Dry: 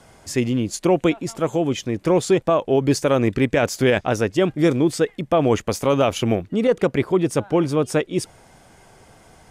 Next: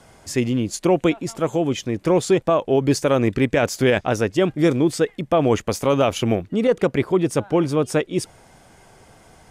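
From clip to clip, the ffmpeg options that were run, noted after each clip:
-af anull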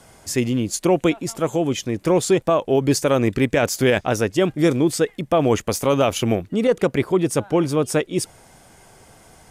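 -af "highshelf=f=7.7k:g=9"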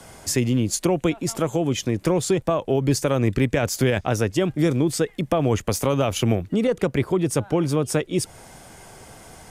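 -filter_complex "[0:a]acrossover=split=140[a][b];[b]acompressor=threshold=-27dB:ratio=2.5[c];[a][c]amix=inputs=2:normalize=0,volume=4.5dB"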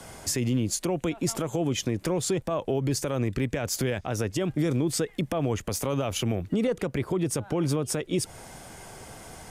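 -af "alimiter=limit=-17.5dB:level=0:latency=1:release=133"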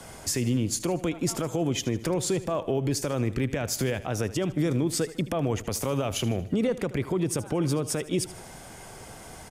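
-af "aecho=1:1:77|154|231|308:0.158|0.0745|0.035|0.0165"

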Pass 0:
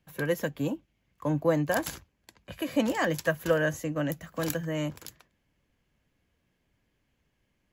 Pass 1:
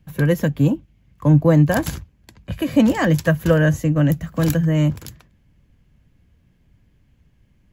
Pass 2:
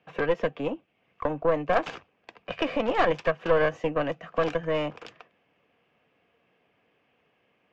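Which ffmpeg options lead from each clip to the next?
-af "bass=f=250:g=14,treble=f=4k:g=-1,volume=6dB"
-af "alimiter=limit=-15dB:level=0:latency=1:release=384,highpass=430,equalizer=f=460:t=q:w=4:g=9,equalizer=f=720:t=q:w=4:g=9,equalizer=f=1.2k:t=q:w=4:g=7,equalizer=f=2.6k:t=q:w=4:g=7,equalizer=f=4.2k:t=q:w=4:g=-7,lowpass=f=4.4k:w=0.5412,lowpass=f=4.4k:w=1.3066,aeval=exprs='(tanh(7.08*val(0)+0.75)-tanh(0.75))/7.08':c=same,volume=4.5dB"

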